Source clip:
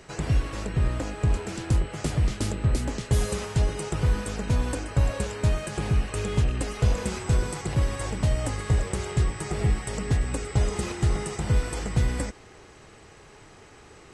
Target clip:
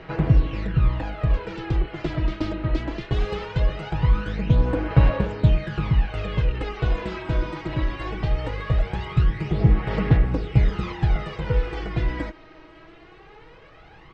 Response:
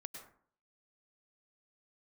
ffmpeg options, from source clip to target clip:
-af "lowpass=f=3.7k:w=0.5412,lowpass=f=3.7k:w=1.3066,aecho=1:1:6.2:0.45,aphaser=in_gain=1:out_gain=1:delay=3.2:decay=0.57:speed=0.2:type=sinusoidal"

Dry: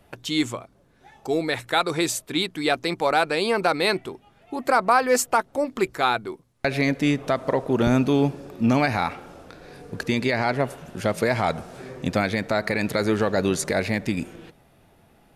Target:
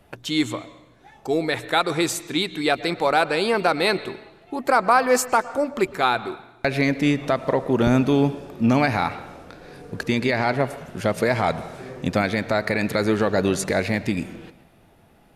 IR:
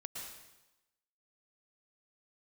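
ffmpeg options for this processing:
-filter_complex "[0:a]asplit=2[a][b];[1:a]atrim=start_sample=2205,lowpass=4.9k[c];[b][c]afir=irnorm=-1:irlink=0,volume=-9.5dB[d];[a][d]amix=inputs=2:normalize=0"

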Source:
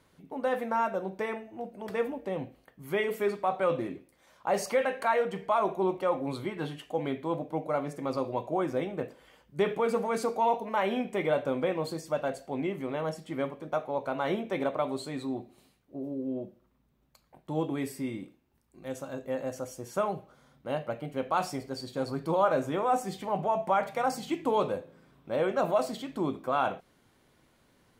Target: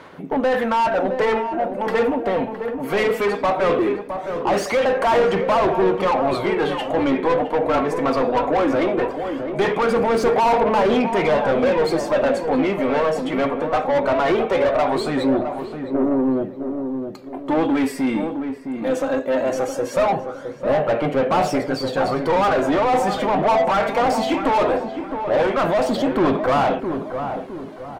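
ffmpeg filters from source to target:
-filter_complex "[0:a]aphaser=in_gain=1:out_gain=1:delay=4.5:decay=0.51:speed=0.19:type=sinusoidal,asplit=2[a][b];[b]highpass=f=720:p=1,volume=30dB,asoftclip=type=tanh:threshold=-9.5dB[c];[a][c]amix=inputs=2:normalize=0,lowpass=f=1.3k:p=1,volume=-6dB,asplit=2[d][e];[e]adelay=663,lowpass=f=1.1k:p=1,volume=-6.5dB,asplit=2[f][g];[g]adelay=663,lowpass=f=1.1k:p=1,volume=0.45,asplit=2[h][i];[i]adelay=663,lowpass=f=1.1k:p=1,volume=0.45,asplit=2[j][k];[k]adelay=663,lowpass=f=1.1k:p=1,volume=0.45,asplit=2[l][m];[m]adelay=663,lowpass=f=1.1k:p=1,volume=0.45[n];[d][f][h][j][l][n]amix=inputs=6:normalize=0"

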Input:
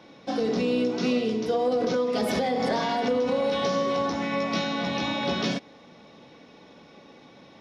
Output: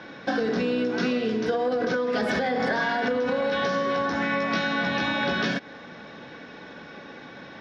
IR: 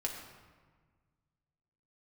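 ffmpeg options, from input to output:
-af "lowpass=5.5k,equalizer=f=1.6k:w=3.7:g=15,acompressor=threshold=-29dB:ratio=6,volume=6.5dB"

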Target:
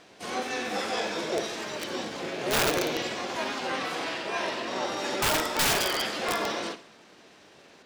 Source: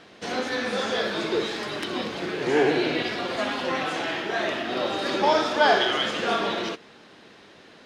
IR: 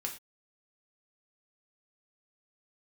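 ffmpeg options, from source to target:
-filter_complex "[0:a]asplit=2[a][b];[b]asetrate=66075,aresample=44100,atempo=0.66742,volume=-1dB[c];[a][c]amix=inputs=2:normalize=0,aeval=exprs='(mod(3.98*val(0)+1,2)-1)/3.98':c=same,asplit=2[d][e];[1:a]atrim=start_sample=2205,asetrate=30870,aresample=44100,adelay=57[f];[e][f]afir=irnorm=-1:irlink=0,volume=-16.5dB[g];[d][g]amix=inputs=2:normalize=0,volume=-6.5dB"

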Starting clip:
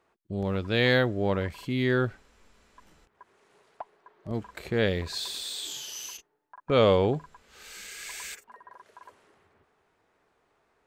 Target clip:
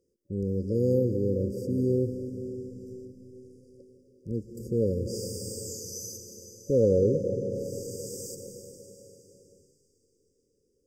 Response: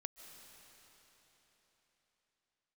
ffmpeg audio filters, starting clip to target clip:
-filter_complex "[1:a]atrim=start_sample=2205[a];[0:a][a]afir=irnorm=-1:irlink=0,afftfilt=real='re*(1-between(b*sr/4096,570,4700))':imag='im*(1-between(b*sr/4096,570,4700))':win_size=4096:overlap=0.75,acontrast=24"

